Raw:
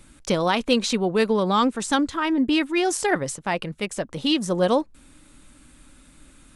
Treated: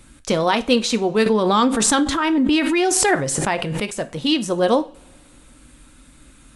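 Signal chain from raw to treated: two-slope reverb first 0.32 s, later 2.5 s, from -28 dB, DRR 10 dB; 1.26–3.95 s: swell ahead of each attack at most 21 dB/s; trim +2.5 dB

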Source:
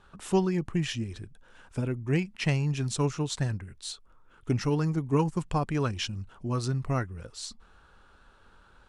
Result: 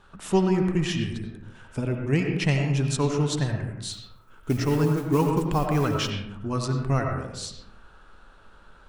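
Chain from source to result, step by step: hum notches 60/120 Hz; 3.92–6.10 s: modulation noise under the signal 24 dB; reverberation RT60 0.85 s, pre-delay 50 ms, DRR 2.5 dB; trim +3 dB

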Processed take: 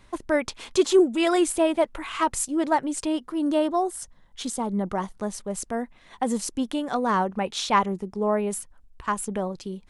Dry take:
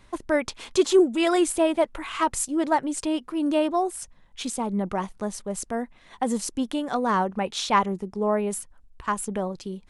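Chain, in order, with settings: 3.12–5.17 s: peaking EQ 2.5 kHz -8.5 dB 0.25 oct

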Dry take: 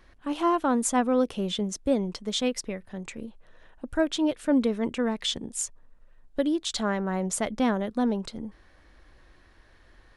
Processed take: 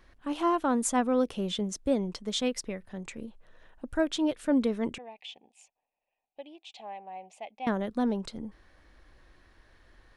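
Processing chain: 4.98–7.67 s: two resonant band-passes 1.4 kHz, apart 1.7 oct; trim -2.5 dB

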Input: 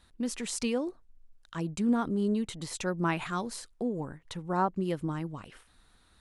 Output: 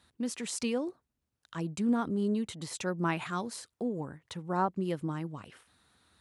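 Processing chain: high-pass 74 Hz 24 dB/octave; trim -1.5 dB

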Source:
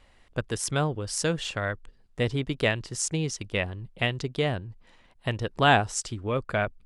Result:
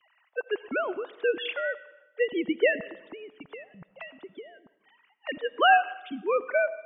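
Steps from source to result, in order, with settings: formants replaced by sine waves; 2.80–5.29 s: compression 16:1, threshold -40 dBFS, peak gain reduction 24 dB; reverberation RT60 1.0 s, pre-delay 40 ms, DRR 16 dB

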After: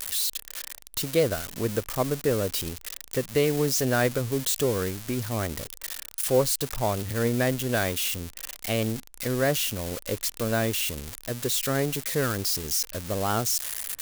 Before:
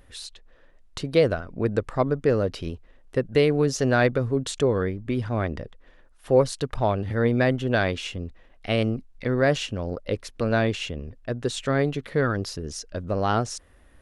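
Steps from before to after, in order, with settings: zero-crossing glitches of -16.5 dBFS; trim -3.5 dB

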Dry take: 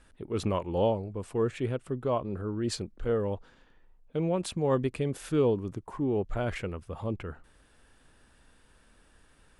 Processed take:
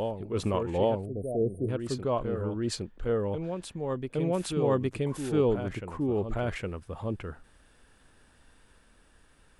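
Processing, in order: reverse echo 813 ms -6 dB; spectral selection erased 1.05–1.69 s, 750–8600 Hz

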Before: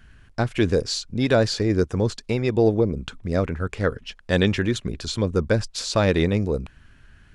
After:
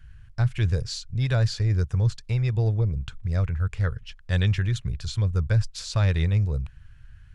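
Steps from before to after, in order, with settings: FFT filter 130 Hz 0 dB, 250 Hz -23 dB, 1.5 kHz -11 dB; trim +4.5 dB

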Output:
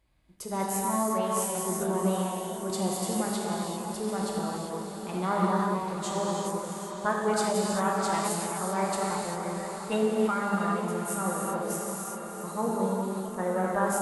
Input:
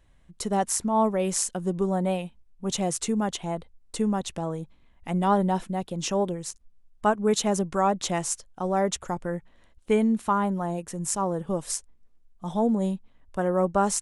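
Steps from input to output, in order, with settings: high-pass 68 Hz 6 dB/octave; gated-style reverb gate 420 ms flat, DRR -3.5 dB; formant shift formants +3 st; on a send: echo that smears into a reverb 683 ms, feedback 65%, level -9 dB; on the sum: trim -8 dB

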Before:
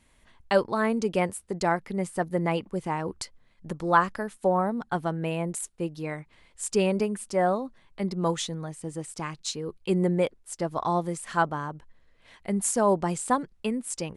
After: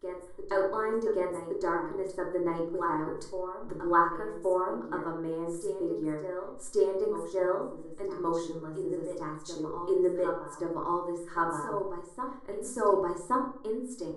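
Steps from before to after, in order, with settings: treble shelf 2.7 kHz -10.5 dB; transient shaper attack 0 dB, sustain -4 dB; static phaser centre 700 Hz, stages 6; reverse echo 1122 ms -8.5 dB; simulated room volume 700 m³, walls furnished, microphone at 2.8 m; trim -3.5 dB

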